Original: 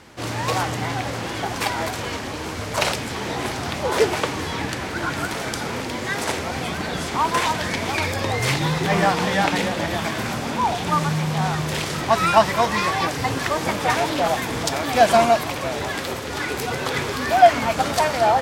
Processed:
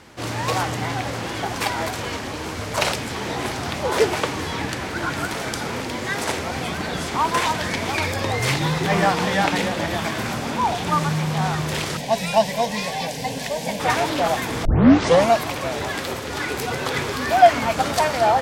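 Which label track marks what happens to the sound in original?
11.970000	13.800000	static phaser centre 340 Hz, stages 6
14.650000	14.650000	tape start 0.65 s

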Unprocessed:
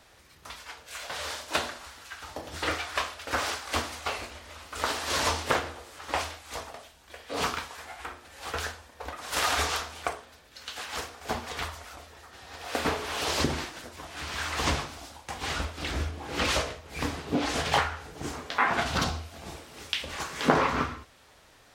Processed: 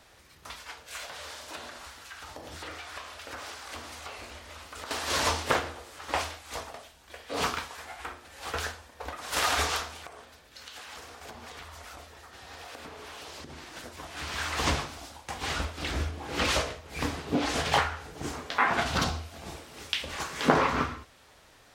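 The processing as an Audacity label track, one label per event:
1.050000	4.910000	compression 4:1, threshold -39 dBFS
9.960000	13.760000	compression 12:1, threshold -40 dBFS

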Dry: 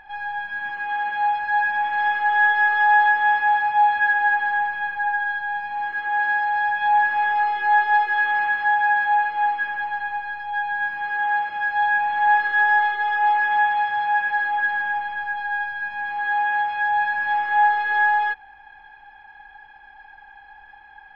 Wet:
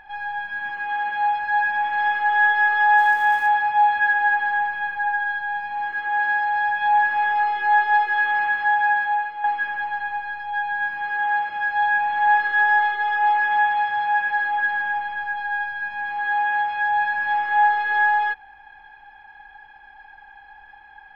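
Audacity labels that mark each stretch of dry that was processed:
2.960000	3.470000	crackle 590 per s -36 dBFS
8.880000	9.440000	fade out linear, to -9 dB

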